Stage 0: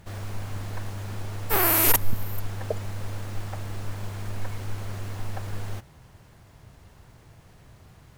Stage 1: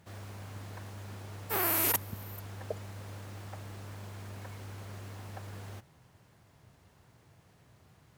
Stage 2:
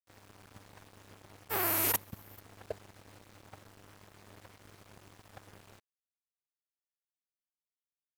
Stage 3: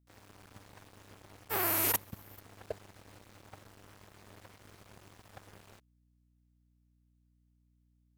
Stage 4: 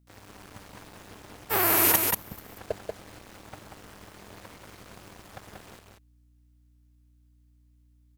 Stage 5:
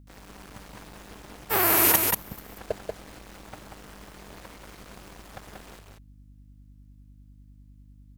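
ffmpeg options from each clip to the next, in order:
ffmpeg -i in.wav -af "highpass=89,volume=-8dB" out.wav
ffmpeg -i in.wav -af "aeval=exprs='sgn(val(0))*max(abs(val(0))-0.0075,0)':channel_layout=same" out.wav
ffmpeg -i in.wav -af "aeval=exprs='val(0)+0.000355*(sin(2*PI*60*n/s)+sin(2*PI*2*60*n/s)/2+sin(2*PI*3*60*n/s)/3+sin(2*PI*4*60*n/s)/4+sin(2*PI*5*60*n/s)/5)':channel_layout=same" out.wav
ffmpeg -i in.wav -af "aecho=1:1:186:0.631,volume=7.5dB" out.wav
ffmpeg -i in.wav -af "aeval=exprs='val(0)+0.00251*(sin(2*PI*50*n/s)+sin(2*PI*2*50*n/s)/2+sin(2*PI*3*50*n/s)/3+sin(2*PI*4*50*n/s)/4+sin(2*PI*5*50*n/s)/5)':channel_layout=same,volume=1.5dB" out.wav

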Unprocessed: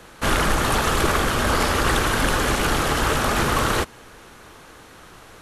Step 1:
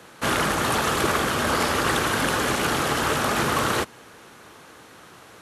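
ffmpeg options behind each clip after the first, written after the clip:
ffmpeg -i in.wav -af "highpass=110,volume=-1.5dB" out.wav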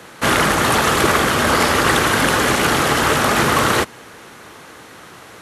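ffmpeg -i in.wav -af "equalizer=frequency=2000:width_type=o:width=0.26:gain=3,volume=7dB" out.wav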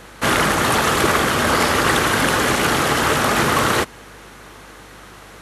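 ffmpeg -i in.wav -af "aeval=exprs='val(0)+0.00501*(sin(2*PI*50*n/s)+sin(2*PI*2*50*n/s)/2+sin(2*PI*3*50*n/s)/3+sin(2*PI*4*50*n/s)/4+sin(2*PI*5*50*n/s)/5)':channel_layout=same,volume=-1.5dB" out.wav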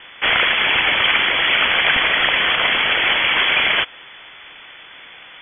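ffmpeg -i in.wav -af "highshelf=frequency=2000:gain=8,lowpass=frequency=3000:width_type=q:width=0.5098,lowpass=frequency=3000:width_type=q:width=0.6013,lowpass=frequency=3000:width_type=q:width=0.9,lowpass=frequency=3000:width_type=q:width=2.563,afreqshift=-3500,volume=-1dB" out.wav

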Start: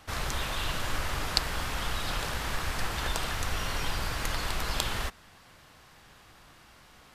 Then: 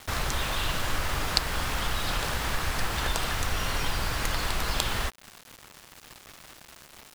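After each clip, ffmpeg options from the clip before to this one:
ffmpeg -i in.wav -filter_complex "[0:a]asplit=2[link_01][link_02];[link_02]acompressor=threshold=-38dB:ratio=6,volume=2dB[link_03];[link_01][link_03]amix=inputs=2:normalize=0,acrusher=bits=6:mix=0:aa=0.000001" out.wav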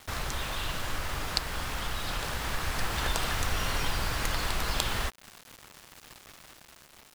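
ffmpeg -i in.wav -af "dynaudnorm=framelen=260:gausssize=9:maxgain=5dB,volume=-4.5dB" out.wav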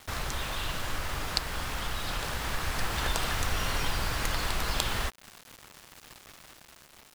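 ffmpeg -i in.wav -af anull out.wav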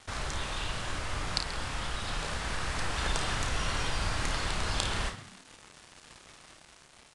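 ffmpeg -i in.wav -filter_complex "[0:a]asplit=2[link_01][link_02];[link_02]asplit=3[link_03][link_04][link_05];[link_03]adelay=133,afreqshift=81,volume=-14dB[link_06];[link_04]adelay=266,afreqshift=162,volume=-23.9dB[link_07];[link_05]adelay=399,afreqshift=243,volume=-33.8dB[link_08];[link_06][link_07][link_08]amix=inputs=3:normalize=0[link_09];[link_01][link_09]amix=inputs=2:normalize=0,aresample=22050,aresample=44100,asplit=2[link_10][link_11];[link_11]aecho=0:1:31|54:0.422|0.316[link_12];[link_10][link_12]amix=inputs=2:normalize=0,volume=-2.5dB" out.wav

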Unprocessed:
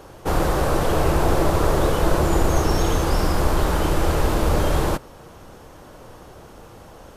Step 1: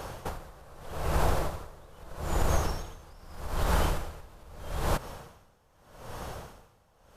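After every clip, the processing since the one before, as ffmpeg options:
ffmpeg -i in.wav -af "equalizer=frequency=320:width=1.6:gain=-8.5,acompressor=threshold=-26dB:ratio=10,aeval=exprs='val(0)*pow(10,-27*(0.5-0.5*cos(2*PI*0.8*n/s))/20)':channel_layout=same,volume=6dB" out.wav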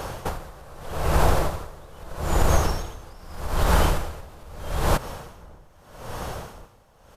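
ffmpeg -i in.wav -filter_complex "[0:a]asplit=2[link_01][link_02];[link_02]adelay=1691,volume=-27dB,highshelf=frequency=4000:gain=-38[link_03];[link_01][link_03]amix=inputs=2:normalize=0,volume=7dB" out.wav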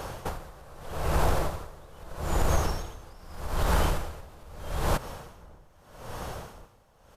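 ffmpeg -i in.wav -af "asoftclip=type=tanh:threshold=-7.5dB,volume=-4.5dB" out.wav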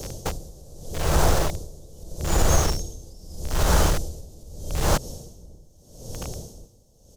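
ffmpeg -i in.wav -filter_complex "[0:a]equalizer=frequency=1000:width_type=o:width=0.67:gain=-3,equalizer=frequency=2500:width_type=o:width=0.67:gain=-5,equalizer=frequency=6300:width_type=o:width=0.67:gain=8,acrossover=split=270|570|3800[link_01][link_02][link_03][link_04];[link_03]acrusher=bits=5:mix=0:aa=0.000001[link_05];[link_01][link_02][link_05][link_04]amix=inputs=4:normalize=0,volume=5.5dB" out.wav

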